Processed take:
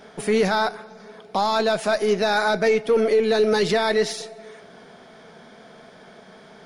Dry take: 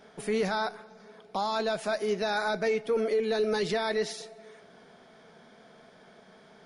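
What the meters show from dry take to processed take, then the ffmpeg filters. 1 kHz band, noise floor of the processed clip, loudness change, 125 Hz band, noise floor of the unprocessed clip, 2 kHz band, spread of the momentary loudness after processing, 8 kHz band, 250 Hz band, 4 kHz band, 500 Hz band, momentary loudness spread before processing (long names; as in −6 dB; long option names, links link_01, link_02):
+8.5 dB, −48 dBFS, +8.5 dB, +8.5 dB, −56 dBFS, +8.5 dB, 8 LU, +8.5 dB, +8.5 dB, +8.5 dB, +8.5 dB, 8 LU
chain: -af "aeval=exprs='0.112*(cos(1*acos(clip(val(0)/0.112,-1,1)))-cos(1*PI/2))+0.00251*(cos(8*acos(clip(val(0)/0.112,-1,1)))-cos(8*PI/2))':channel_layout=same,volume=8.5dB"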